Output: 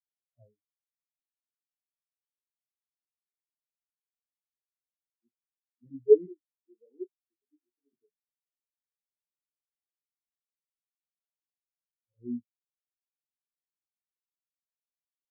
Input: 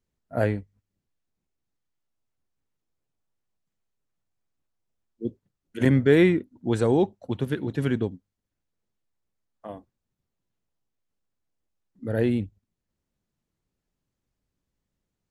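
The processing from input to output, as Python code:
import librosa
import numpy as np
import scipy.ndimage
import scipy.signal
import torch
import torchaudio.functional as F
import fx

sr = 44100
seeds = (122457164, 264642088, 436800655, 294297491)

y = fx.highpass(x, sr, hz=230.0, slope=24, at=(6.26, 7.93))
y = fx.chorus_voices(y, sr, voices=2, hz=0.57, base_ms=13, depth_ms=4.1, mix_pct=45)
y = fx.doubler(y, sr, ms=33.0, db=-8)
y = fx.spectral_expand(y, sr, expansion=4.0)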